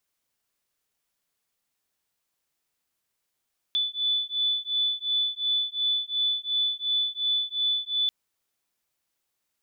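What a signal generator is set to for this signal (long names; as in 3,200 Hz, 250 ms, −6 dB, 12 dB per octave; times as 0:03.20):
two tones that beat 3,480 Hz, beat 2.8 Hz, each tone −27 dBFS 4.34 s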